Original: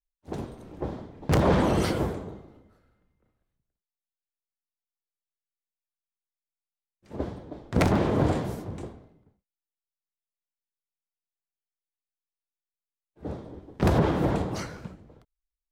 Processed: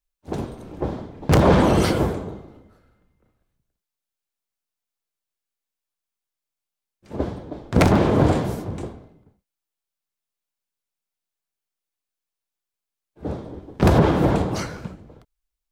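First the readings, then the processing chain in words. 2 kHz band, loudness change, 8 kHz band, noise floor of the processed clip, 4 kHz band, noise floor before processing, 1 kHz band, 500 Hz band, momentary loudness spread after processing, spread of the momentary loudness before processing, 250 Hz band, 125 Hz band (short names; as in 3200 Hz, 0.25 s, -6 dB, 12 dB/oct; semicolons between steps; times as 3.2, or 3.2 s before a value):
+6.0 dB, +6.5 dB, +6.5 dB, under -85 dBFS, +6.5 dB, under -85 dBFS, +6.5 dB, +6.5 dB, 19 LU, 19 LU, +6.5 dB, +6.5 dB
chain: notch 1900 Hz, Q 25; gain +6.5 dB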